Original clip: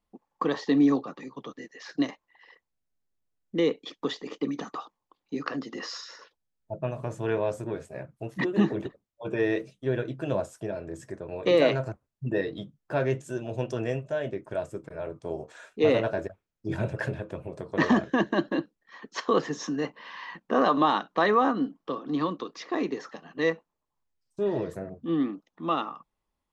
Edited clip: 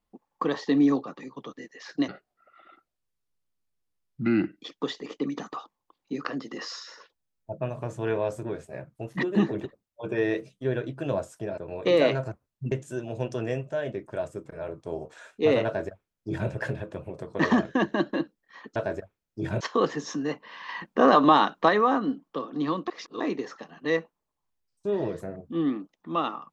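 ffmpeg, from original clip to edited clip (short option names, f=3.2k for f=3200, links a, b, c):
-filter_complex "[0:a]asplit=11[a][b][c][d][e][f][g][h][i][j][k];[a]atrim=end=2.084[l];[b]atrim=start=2.08:end=3.83,asetpts=PTS-STARTPTS,asetrate=30429,aresample=44100[m];[c]atrim=start=3.826:end=10.792[n];[d]atrim=start=11.178:end=12.322[o];[e]atrim=start=13.098:end=19.142[p];[f]atrim=start=16.028:end=16.882[q];[g]atrim=start=19.138:end=20.222[r];[h]atrim=start=20.218:end=21.222,asetpts=PTS-STARTPTS,volume=4.5dB[s];[i]atrim=start=21.218:end=22.412[t];[j]atrim=start=22.408:end=22.742,asetpts=PTS-STARTPTS,areverse[u];[k]atrim=start=22.738[v];[l][m]acrossfade=d=0.004:c1=hsin:c2=hsin[w];[w][n]acrossfade=d=0.004:c1=hsin:c2=hsin[x];[x][o]acrossfade=d=0.004:c1=hsin:c2=hsin[y];[y][p]acrossfade=d=0.004:c1=hsin:c2=hsin[z];[z][q]acrossfade=d=0.004:c1=hsin:c2=hsin[aa];[aa][r]acrossfade=d=0.004:c1=hsin:c2=hsin[ab];[ab][s]acrossfade=d=0.004:c1=hsin:c2=hsin[ac];[ac][t]acrossfade=d=0.004:c1=hsin:c2=hsin[ad];[ad][u]acrossfade=d=0.004:c1=hsin:c2=hsin[ae];[ae][v]acrossfade=d=0.004:c1=hsin:c2=hsin"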